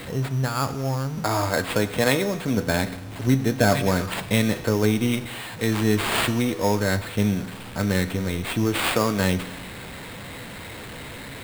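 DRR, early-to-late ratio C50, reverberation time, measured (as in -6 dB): 11.5 dB, 14.0 dB, 1.2 s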